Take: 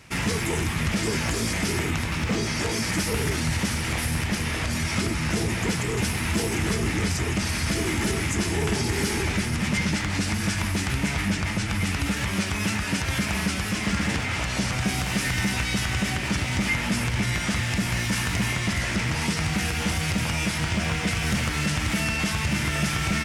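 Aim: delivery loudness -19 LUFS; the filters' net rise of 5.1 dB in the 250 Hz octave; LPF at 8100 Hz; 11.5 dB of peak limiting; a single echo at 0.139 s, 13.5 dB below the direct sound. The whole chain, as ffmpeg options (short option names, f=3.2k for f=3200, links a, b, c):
-af "lowpass=8.1k,equalizer=f=250:t=o:g=7,alimiter=limit=-21.5dB:level=0:latency=1,aecho=1:1:139:0.211,volume=10.5dB"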